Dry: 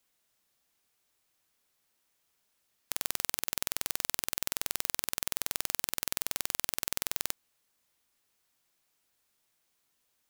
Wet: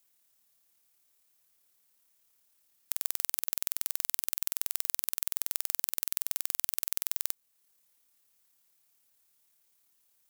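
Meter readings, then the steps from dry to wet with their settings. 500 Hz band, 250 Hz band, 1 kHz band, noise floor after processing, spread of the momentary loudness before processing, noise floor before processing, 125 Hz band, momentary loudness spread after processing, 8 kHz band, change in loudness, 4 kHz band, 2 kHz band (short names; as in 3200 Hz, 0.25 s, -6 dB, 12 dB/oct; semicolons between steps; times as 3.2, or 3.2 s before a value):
-7.5 dB, -8.0 dB, -7.5 dB, -75 dBFS, 2 LU, -77 dBFS, n/a, 2 LU, -0.5 dB, +1.5 dB, -5.0 dB, -7.0 dB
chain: high shelf 7000 Hz +12 dB; in parallel at -1 dB: compressor, threshold -38 dBFS, peak gain reduction 19.5 dB; on the sum: AM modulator 36 Hz, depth 15%; gain -7.5 dB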